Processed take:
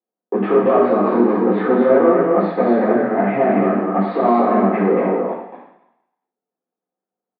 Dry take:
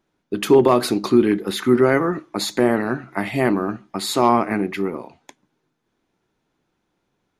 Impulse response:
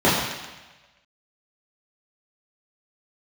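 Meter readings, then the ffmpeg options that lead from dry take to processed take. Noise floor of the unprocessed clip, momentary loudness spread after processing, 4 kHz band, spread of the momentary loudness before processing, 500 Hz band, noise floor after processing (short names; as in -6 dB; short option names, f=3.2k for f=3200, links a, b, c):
-74 dBFS, 6 LU, under -15 dB, 12 LU, +4.5 dB, under -85 dBFS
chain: -filter_complex "[0:a]agate=range=-33dB:threshold=-46dB:ratio=16:detection=peak,acompressor=threshold=-26dB:ratio=4,aresample=11025,volume=28.5dB,asoftclip=hard,volume=-28.5dB,aresample=44100,acrusher=bits=4:mode=log:mix=0:aa=0.000001,highpass=f=190:w=0.5412,highpass=f=190:w=1.3066,equalizer=f=290:t=q:w=4:g=-6,equalizer=f=500:t=q:w=4:g=8,equalizer=f=700:t=q:w=4:g=9,lowpass=f=2k:w=0.5412,lowpass=f=2k:w=1.3066,aecho=1:1:230.3|288.6:0.631|0.251[a];[1:a]atrim=start_sample=2205,asetrate=57330,aresample=44100[b];[a][b]afir=irnorm=-1:irlink=0,volume=-9.5dB"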